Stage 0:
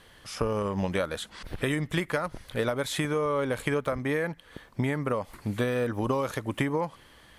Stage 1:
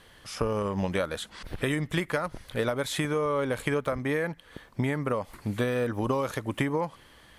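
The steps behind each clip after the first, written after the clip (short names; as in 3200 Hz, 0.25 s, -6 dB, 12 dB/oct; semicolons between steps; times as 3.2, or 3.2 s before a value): nothing audible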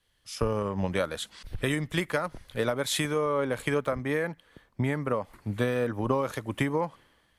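three-band expander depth 70%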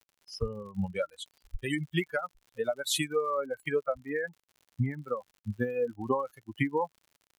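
per-bin expansion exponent 3; crackle 87/s -51 dBFS; gain +3.5 dB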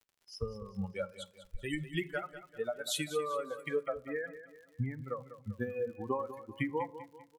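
feedback echo 0.196 s, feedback 42%, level -13 dB; on a send at -15 dB: reverb RT60 0.45 s, pre-delay 3 ms; on the sum: gain -5.5 dB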